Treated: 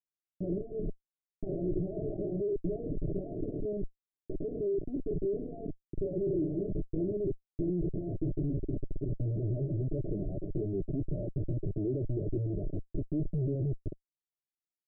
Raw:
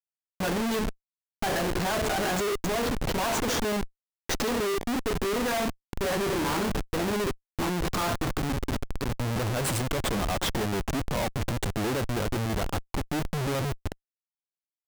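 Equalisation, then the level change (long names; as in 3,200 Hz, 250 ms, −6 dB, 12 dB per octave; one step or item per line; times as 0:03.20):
Butterworth low-pass 600 Hz 96 dB per octave
phaser with its sweep stopped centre 340 Hz, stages 8
0.0 dB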